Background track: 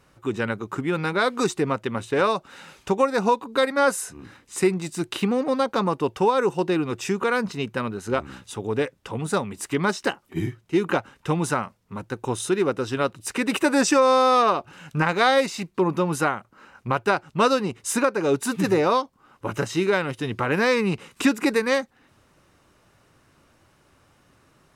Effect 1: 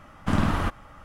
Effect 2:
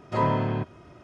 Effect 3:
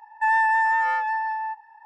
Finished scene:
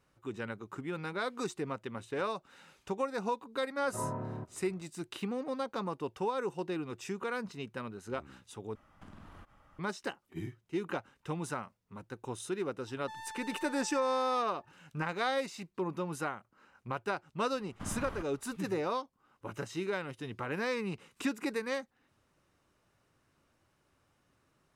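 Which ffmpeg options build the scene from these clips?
-filter_complex "[1:a]asplit=2[a][b];[0:a]volume=-13.5dB[c];[2:a]lowpass=f=1.5k:w=0.5412,lowpass=f=1.5k:w=1.3066[d];[a]acompressor=threshold=-34dB:ratio=6:attack=3.2:release=140:knee=1:detection=peak[e];[3:a]asoftclip=type=tanh:threshold=-26dB[f];[c]asplit=2[g][h];[g]atrim=end=8.754[i];[e]atrim=end=1.04,asetpts=PTS-STARTPTS,volume=-15dB[j];[h]atrim=start=9.786[k];[d]atrim=end=1.03,asetpts=PTS-STARTPTS,volume=-13dB,afade=t=in:d=0.004:c=hsin,afade=t=out:st=1.026:d=0.004:c=hsin,adelay=168021S[l];[f]atrim=end=1.85,asetpts=PTS-STARTPTS,volume=-17.5dB,afade=t=in:d=0.004:c=hsin,afade=t=out:st=1.846:d=0.004:c=hsin,adelay=12860[m];[b]atrim=end=1.04,asetpts=PTS-STARTPTS,volume=-17.5dB,afade=t=in:d=0.004:c=hsin,afade=t=out:st=1.036:d=0.004:c=hsin,adelay=17530[n];[i][j]acrossfade=d=0.004:c1=hsin:c2=hsin[o];[o][k]acrossfade=d=0.004:c1=hsin:c2=hsin[p];[p][l][m][n]amix=inputs=4:normalize=0"

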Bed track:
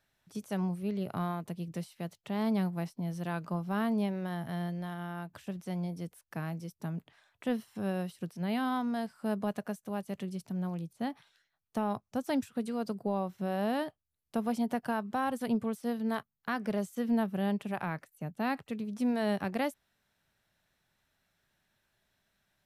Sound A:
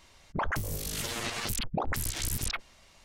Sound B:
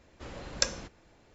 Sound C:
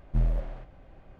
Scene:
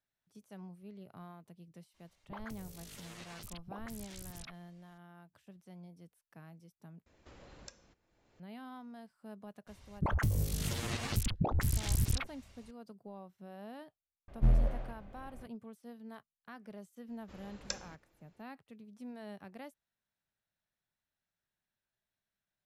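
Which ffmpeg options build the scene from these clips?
-filter_complex "[1:a]asplit=2[a][b];[2:a]asplit=2[c][d];[0:a]volume=-16.5dB[e];[c]acompressor=threshold=-44dB:ratio=3:attack=2.9:release=727:knee=1:detection=peak[f];[b]equalizer=f=82:t=o:w=2.9:g=13[g];[e]asplit=2[h][i];[h]atrim=end=7.064[j];[f]atrim=end=1.34,asetpts=PTS-STARTPTS,volume=-7dB[k];[i]atrim=start=8.396[l];[a]atrim=end=3.04,asetpts=PTS-STARTPTS,volume=-17dB,afade=t=in:d=0.004:c=hsin,afade=t=out:st=3.036:d=0.004:c=hsin,adelay=1940[m];[g]atrim=end=3.04,asetpts=PTS-STARTPTS,volume=-6dB,afade=t=in:d=0.004:c=hsin,afade=t=out:st=3.036:d=0.004:c=hsin,adelay=9670[n];[3:a]atrim=end=1.19,asetpts=PTS-STARTPTS,volume=-1dB,afade=t=in:d=0.004:c=hsin,afade=t=out:st=1.186:d=0.004:c=hsin,adelay=629748S[o];[d]atrim=end=1.34,asetpts=PTS-STARTPTS,volume=-11.5dB,afade=t=in:d=0.004:c=hsin,afade=t=out:st=1.336:d=0.004:c=hsin,adelay=17080[p];[j][k]acrossfade=d=0.004:c1=hsin:c2=hsin[q];[q][l]acrossfade=d=0.004:c1=hsin:c2=hsin[r];[r][m][n][o][p]amix=inputs=5:normalize=0"

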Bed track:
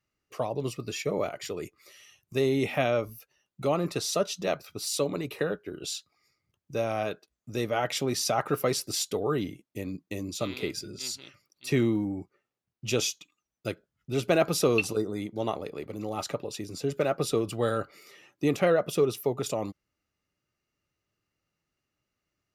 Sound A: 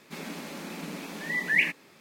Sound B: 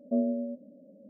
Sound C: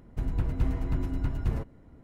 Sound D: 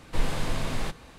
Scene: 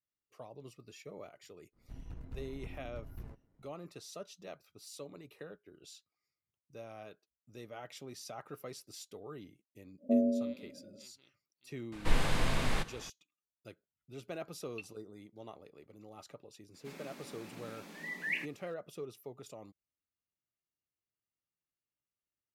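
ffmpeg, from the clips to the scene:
-filter_complex "[0:a]volume=-19dB[a];[3:a]aeval=exprs='if(lt(val(0),0),0.447*val(0),val(0))':c=same[b];[4:a]equalizer=f=2k:w=0.75:g=3.5[c];[b]atrim=end=2.03,asetpts=PTS-STARTPTS,volume=-15.5dB,afade=t=in:d=0.05,afade=t=out:st=1.98:d=0.05,adelay=1720[d];[2:a]atrim=end=1.09,asetpts=PTS-STARTPTS,volume=-0.5dB,afade=t=in:d=0.1,afade=t=out:st=0.99:d=0.1,adelay=9980[e];[c]atrim=end=1.18,asetpts=PTS-STARTPTS,volume=-2.5dB,afade=t=in:d=0.004:c=hsin,afade=t=out:st=1.176:d=0.004:c=hsin,adelay=11920[f];[1:a]atrim=end=2,asetpts=PTS-STARTPTS,volume=-12dB,afade=t=in:d=0.004:c=hsin,afade=t=out:st=1.996:d=0.004:c=hsin,adelay=16740[g];[a][d][e][f][g]amix=inputs=5:normalize=0"

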